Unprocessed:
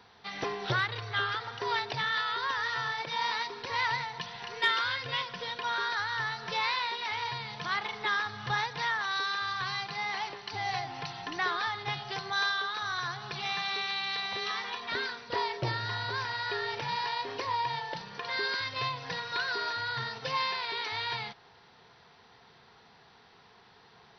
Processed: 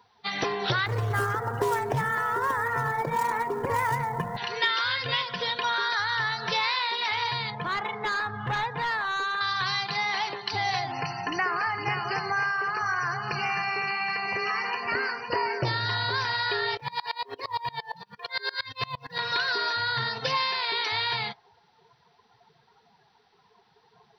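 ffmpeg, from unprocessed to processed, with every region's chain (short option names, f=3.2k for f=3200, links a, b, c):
-filter_complex "[0:a]asettb=1/sr,asplit=3[a][b][c];[a]atrim=end=0.864[d];[b]atrim=start=0.86:end=4.37,asetpts=PTS-STARTPTS,afade=t=in:d=0.004:c=qsin,afade=t=out:st=3.506:d=0.004:c=qsin,lowpass=f=2.3k:w=0.5412,lowpass=f=2.3k:w=1.3066,tiltshelf=f=1.3k:g=9.5,acrusher=bits=3:mode=log:mix=0:aa=0.000001[e];[c]atrim=start=4.366[f];[d][e]acrossfade=d=0.004:c1=hsin:c2=qsin[g];[g][f]acrossfade=d=0.004:c1=qsin:c2=hsin,asettb=1/sr,asplit=3[h][i][j];[h]atrim=end=7.504[k];[i]atrim=start=7.5:end=9.41,asetpts=PTS-STARTPTS,afade=t=in:d=0.004:c=qsin,afade=t=out:st=1.906:d=0.004:c=qsin,lowpass=f=1.9k:p=1,aemphasis=mode=reproduction:type=50kf,asoftclip=type=hard:threshold=-32.5dB[l];[j]atrim=start=9.406[m];[k][l]acrossfade=d=0.004:c1=hsin:c2=qsin[n];[n][m]acrossfade=d=0.004:c1=qsin:c2=hsin,asettb=1/sr,asplit=3[o][p][q];[o]atrim=end=10.924[r];[p]atrim=start=10.92:end=15.65,asetpts=PTS-STARTPTS,afade=t=in:d=0.004:c=qsin,afade=t=out:st=4.726:d=0.004:c=qsin,acrossover=split=3200[s][t];[t]acompressor=threshold=-44dB:ratio=4:attack=1:release=60[u];[s][u]amix=inputs=2:normalize=0,asuperstop=centerf=3600:order=20:qfactor=2.9,aecho=1:1:510:0.355,atrim=end_sample=208593[v];[q]atrim=start=15.646[w];[r][v]acrossfade=d=0.004:c1=hsin:c2=qsin[x];[x][w]acrossfade=d=0.004:c1=qsin:c2=hsin,asettb=1/sr,asplit=3[y][z][aa];[y]atrim=end=16.774[ab];[z]atrim=start=16.77:end=19.19,asetpts=PTS-STARTPTS,afade=t=in:d=0.004:c=qsin,afade=t=out:st=2.416:d=0.004:c=qsin,acrusher=bits=6:mode=log:mix=0:aa=0.000001,aeval=exprs='val(0)*pow(10,-29*if(lt(mod(-8.7*n/s,1),2*abs(-8.7)/1000),1-mod(-8.7*n/s,1)/(2*abs(-8.7)/1000),(mod(-8.7*n/s,1)-2*abs(-8.7)/1000)/(1-2*abs(-8.7)/1000))/20)':c=same[ac];[aa]atrim=start=19.186[ad];[ab][ac]acrossfade=d=0.004:c1=hsin:c2=qsin[ae];[ae][ad]acrossfade=d=0.004:c1=qsin:c2=hsin,afftdn=nr=18:nf=-48,highshelf=f=5.5k:g=8,acompressor=threshold=-34dB:ratio=2.5,volume=8.5dB"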